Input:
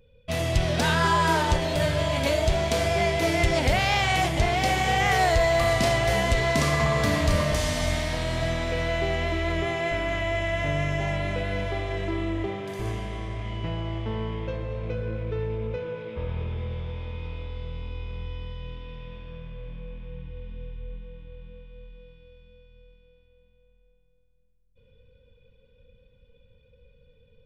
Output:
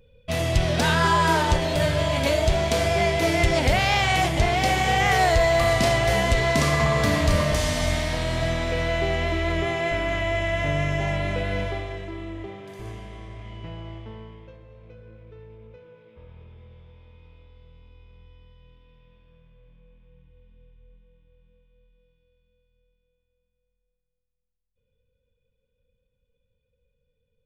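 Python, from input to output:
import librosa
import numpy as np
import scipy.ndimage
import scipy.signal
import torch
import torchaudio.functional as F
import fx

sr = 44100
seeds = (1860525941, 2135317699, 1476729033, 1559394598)

y = fx.gain(x, sr, db=fx.line((11.62, 2.0), (12.08, -6.5), (13.9, -6.5), (14.6, -16.0)))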